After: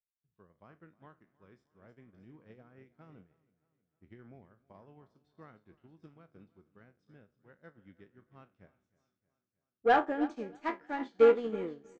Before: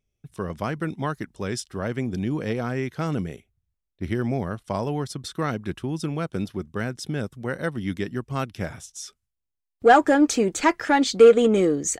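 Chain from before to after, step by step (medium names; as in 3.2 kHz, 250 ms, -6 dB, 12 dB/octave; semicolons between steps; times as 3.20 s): spectral sustain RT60 0.40 s; low-pass 2.6 kHz 12 dB/octave; saturation -5.5 dBFS, distortion -22 dB; feedback delay 314 ms, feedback 57%, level -12 dB; upward expansion 2.5:1, over -32 dBFS; trim -7 dB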